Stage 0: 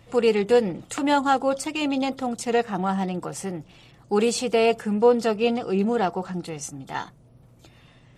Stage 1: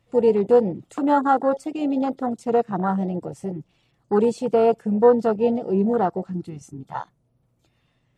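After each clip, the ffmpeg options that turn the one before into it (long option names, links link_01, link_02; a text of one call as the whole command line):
ffmpeg -i in.wav -af "afwtdn=0.0631,volume=2.5dB" out.wav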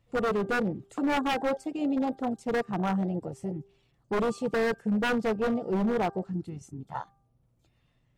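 ffmpeg -i in.wav -af "lowshelf=frequency=82:gain=10,aeval=exprs='0.168*(abs(mod(val(0)/0.168+3,4)-2)-1)':channel_layout=same,bandreject=frequency=396.1:width_type=h:width=4,bandreject=frequency=792.2:width_type=h:width=4,bandreject=frequency=1188.3:width_type=h:width=4,bandreject=frequency=1584.4:width_type=h:width=4,volume=-5.5dB" out.wav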